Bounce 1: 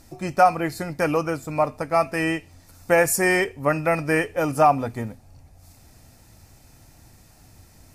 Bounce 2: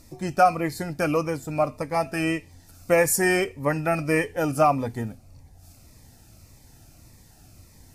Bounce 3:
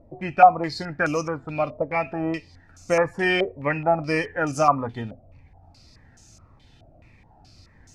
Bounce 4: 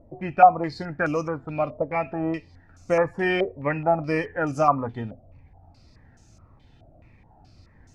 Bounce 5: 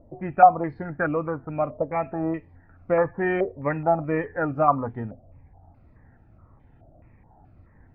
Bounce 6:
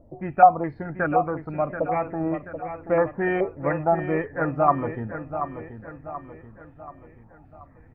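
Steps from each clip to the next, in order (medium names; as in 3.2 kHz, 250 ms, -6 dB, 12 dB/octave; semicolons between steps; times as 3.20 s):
Shepard-style phaser falling 1.7 Hz
step-sequenced low-pass 4.7 Hz 630–6500 Hz; trim -2 dB
treble shelf 2.9 kHz -11.5 dB
low-pass 1.9 kHz 24 dB/octave
feedback delay 732 ms, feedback 47%, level -9.5 dB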